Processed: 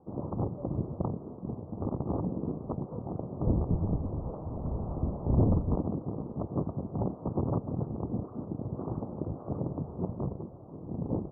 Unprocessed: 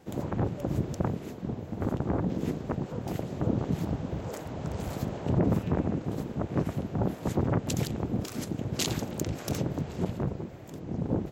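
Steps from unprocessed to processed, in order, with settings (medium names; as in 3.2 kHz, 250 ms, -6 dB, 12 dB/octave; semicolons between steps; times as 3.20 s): 3.43–5.75 s: octave divider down 1 oct, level +3 dB; steep low-pass 1.2 kHz 72 dB/octave; trim -3 dB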